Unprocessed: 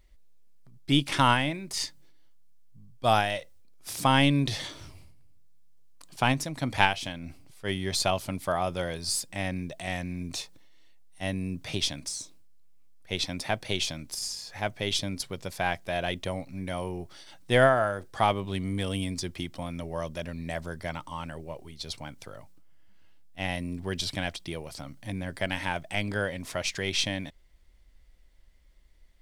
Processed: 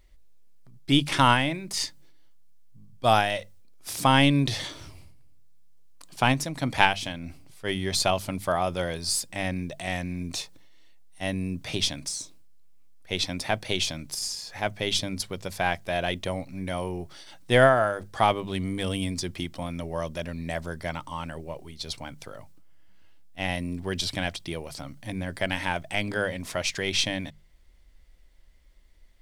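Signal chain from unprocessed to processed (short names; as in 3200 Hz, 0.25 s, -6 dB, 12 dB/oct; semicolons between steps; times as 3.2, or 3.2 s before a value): notches 50/100/150/200 Hz; gain +2.5 dB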